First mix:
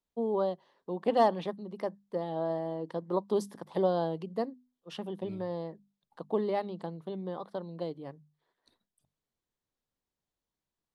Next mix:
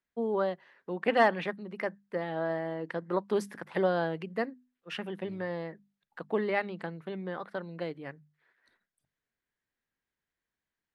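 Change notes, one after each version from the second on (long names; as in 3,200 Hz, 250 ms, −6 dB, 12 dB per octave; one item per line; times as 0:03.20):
first voice: add flat-topped bell 1,900 Hz +14.5 dB 1.2 octaves
second voice −5.5 dB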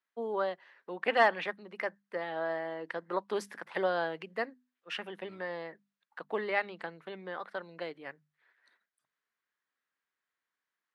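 second voice: add flat-topped bell 1,400 Hz +14.5 dB 1.2 octaves
master: add meter weighting curve A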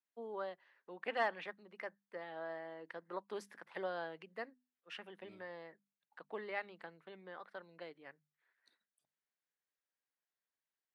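first voice −10.5 dB
second voice: add flat-topped bell 1,400 Hz −14.5 dB 1.2 octaves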